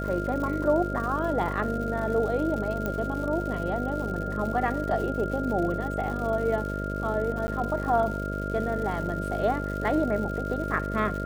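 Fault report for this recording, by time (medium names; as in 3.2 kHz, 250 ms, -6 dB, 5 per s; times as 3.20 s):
buzz 50 Hz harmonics 13 -32 dBFS
crackle 190 per s -35 dBFS
whine 1.4 kHz -34 dBFS
2.86 s: pop -16 dBFS
7.47–7.48 s: dropout 10 ms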